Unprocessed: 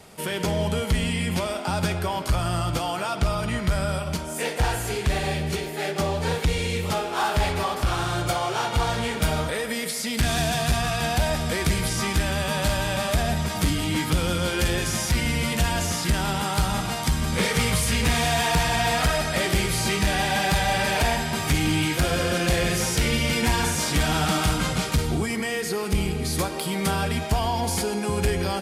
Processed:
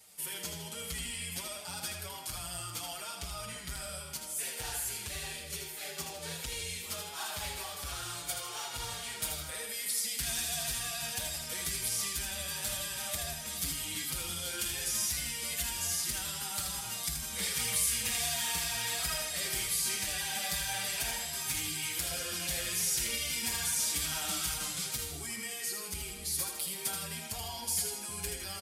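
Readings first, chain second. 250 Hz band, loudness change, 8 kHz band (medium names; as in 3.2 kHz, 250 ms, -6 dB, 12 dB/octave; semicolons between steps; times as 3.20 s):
-22.0 dB, -9.5 dB, -1.5 dB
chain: pre-emphasis filter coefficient 0.9; feedback delay 79 ms, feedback 45%, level -6 dB; endless flanger 6 ms -2.6 Hz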